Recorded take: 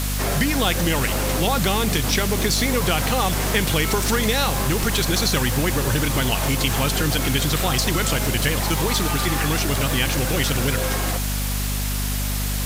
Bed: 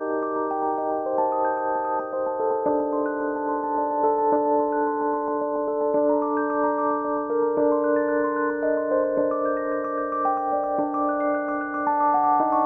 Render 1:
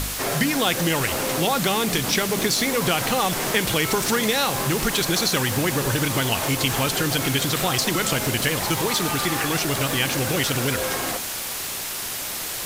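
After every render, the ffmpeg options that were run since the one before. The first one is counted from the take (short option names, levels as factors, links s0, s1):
-af "bandreject=f=50:t=h:w=4,bandreject=f=100:t=h:w=4,bandreject=f=150:t=h:w=4,bandreject=f=200:t=h:w=4,bandreject=f=250:t=h:w=4"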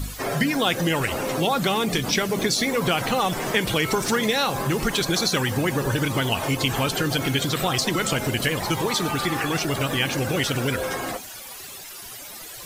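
-af "afftdn=nr=14:nf=-30"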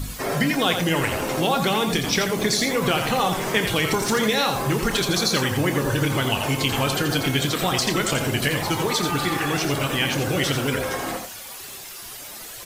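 -filter_complex "[0:a]asplit=2[s0][s1];[s1]adelay=28,volume=0.282[s2];[s0][s2]amix=inputs=2:normalize=0,asplit=2[s3][s4];[s4]aecho=0:1:85:0.447[s5];[s3][s5]amix=inputs=2:normalize=0"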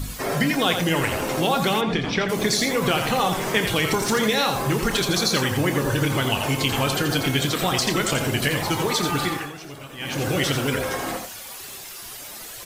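-filter_complex "[0:a]asplit=3[s0][s1][s2];[s0]afade=t=out:st=1.8:d=0.02[s3];[s1]lowpass=3100,afade=t=in:st=1.8:d=0.02,afade=t=out:st=2.28:d=0.02[s4];[s2]afade=t=in:st=2.28:d=0.02[s5];[s3][s4][s5]amix=inputs=3:normalize=0,asplit=3[s6][s7][s8];[s6]atrim=end=9.53,asetpts=PTS-STARTPTS,afade=t=out:st=9.24:d=0.29:silence=0.177828[s9];[s7]atrim=start=9.53:end=9.97,asetpts=PTS-STARTPTS,volume=0.178[s10];[s8]atrim=start=9.97,asetpts=PTS-STARTPTS,afade=t=in:d=0.29:silence=0.177828[s11];[s9][s10][s11]concat=n=3:v=0:a=1"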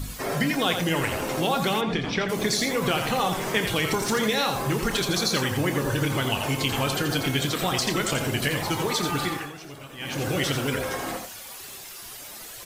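-af "volume=0.708"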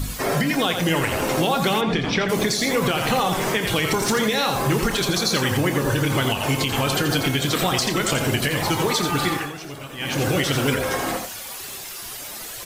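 -af "alimiter=limit=0.15:level=0:latency=1:release=192,acontrast=55"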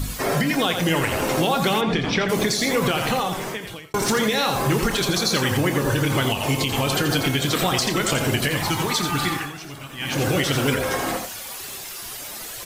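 -filter_complex "[0:a]asettb=1/sr,asplit=3[s0][s1][s2];[s0]atrim=end=6.274[s3];[s1]atrim=start=6.27:end=6.91,asetpts=PTS-STARTPTS,afade=t=in:d=0.004:c=qsin,afade=t=out:st=0.636:d=0.004:c=qsin,equalizer=f=1500:w=3.3:g=-7.5[s4];[s2]atrim=start=6.906[s5];[s3][s4]acrossfade=d=0.004:c1=hsin:c2=qsin[s6];[s6][s5]acrossfade=d=0.004:c1=qsin:c2=hsin,asettb=1/sr,asplit=3[s7][s8][s9];[s7]atrim=end=8.574[s10];[s8]atrim=start=8.57:end=10.12,asetpts=PTS-STARTPTS,afade=t=in:d=0.004:c=qsin,afade=t=out:st=1.546:d=0.004:c=qsin,equalizer=f=490:w=1.6:g=-7.5[s11];[s9]atrim=start=10.116[s12];[s10][s11]acrossfade=d=0.004:c1=hsin:c2=qsin[s13];[s13][s12]acrossfade=d=0.004:c1=qsin:c2=hsin,asplit=2[s14][s15];[s14]atrim=end=3.94,asetpts=PTS-STARTPTS,afade=t=out:st=2.95:d=0.99[s16];[s15]atrim=start=3.94,asetpts=PTS-STARTPTS,afade=t=in:d=0.004:c=hsin[s17];[s16][s17]concat=n=2:v=0:a=1"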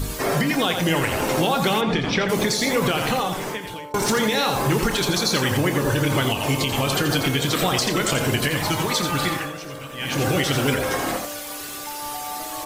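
-filter_complex "[1:a]volume=0.224[s0];[0:a][s0]amix=inputs=2:normalize=0"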